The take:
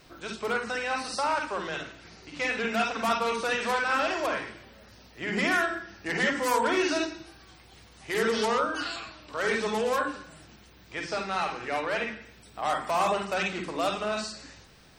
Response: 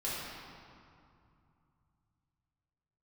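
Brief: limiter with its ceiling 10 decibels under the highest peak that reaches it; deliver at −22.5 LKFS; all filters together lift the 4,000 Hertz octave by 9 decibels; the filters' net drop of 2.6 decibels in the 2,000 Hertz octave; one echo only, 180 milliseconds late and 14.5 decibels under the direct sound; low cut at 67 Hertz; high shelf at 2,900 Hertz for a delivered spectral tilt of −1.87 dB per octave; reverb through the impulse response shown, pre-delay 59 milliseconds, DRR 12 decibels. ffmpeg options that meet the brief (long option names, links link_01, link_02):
-filter_complex "[0:a]highpass=67,equalizer=frequency=2000:width_type=o:gain=-9,highshelf=frequency=2900:gain=8.5,equalizer=frequency=4000:width_type=o:gain=7.5,alimiter=limit=-21dB:level=0:latency=1,aecho=1:1:180:0.188,asplit=2[link_01][link_02];[1:a]atrim=start_sample=2205,adelay=59[link_03];[link_02][link_03]afir=irnorm=-1:irlink=0,volume=-17dB[link_04];[link_01][link_04]amix=inputs=2:normalize=0,volume=8dB"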